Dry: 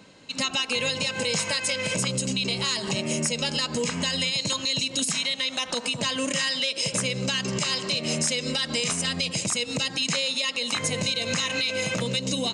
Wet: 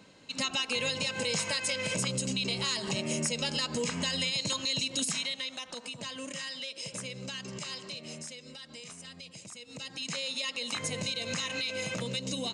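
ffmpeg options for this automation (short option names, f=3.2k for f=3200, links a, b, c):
-af "volume=7.5dB,afade=t=out:st=5.05:d=0.6:silence=0.398107,afade=t=out:st=7.72:d=0.71:silence=0.446684,afade=t=in:st=9.63:d=0.75:silence=0.237137"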